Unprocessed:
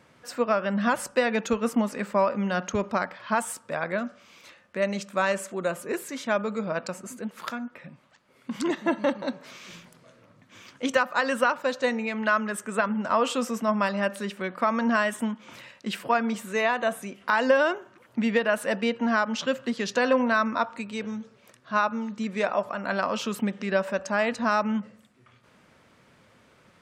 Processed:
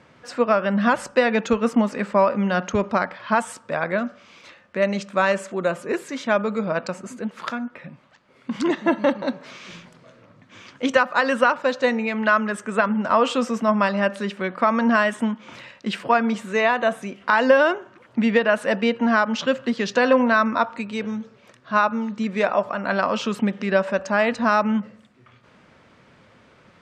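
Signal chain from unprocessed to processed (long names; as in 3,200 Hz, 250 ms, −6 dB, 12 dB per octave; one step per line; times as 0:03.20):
high-frequency loss of the air 76 metres
level +5.5 dB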